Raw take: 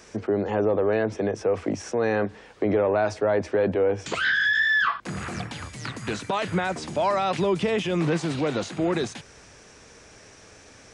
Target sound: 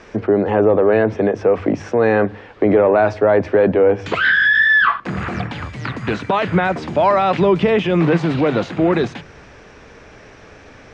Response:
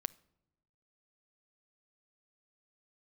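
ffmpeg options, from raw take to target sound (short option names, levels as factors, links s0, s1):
-filter_complex "[0:a]lowpass=2800,bandreject=f=50:t=h:w=6,bandreject=f=100:t=h:w=6,bandreject=f=150:t=h:w=6,asplit=2[s0][s1];[1:a]atrim=start_sample=2205,lowshelf=f=68:g=9[s2];[s1][s2]afir=irnorm=-1:irlink=0,volume=1.12[s3];[s0][s3]amix=inputs=2:normalize=0,volume=1.41"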